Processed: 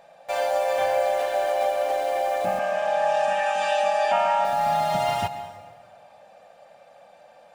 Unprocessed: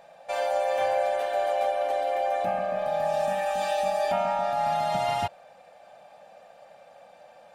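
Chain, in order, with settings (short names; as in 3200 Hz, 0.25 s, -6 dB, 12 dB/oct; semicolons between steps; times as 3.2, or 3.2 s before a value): in parallel at -8 dB: bit-crush 6-bit; 2.59–4.45 on the sum: speaker cabinet 310–8200 Hz, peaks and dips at 360 Hz -5 dB, 960 Hz +5 dB, 1600 Hz +6 dB, 2800 Hz +7 dB, 4100 Hz -4 dB; plate-style reverb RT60 1.6 s, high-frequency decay 0.75×, pre-delay 0.11 s, DRR 11.5 dB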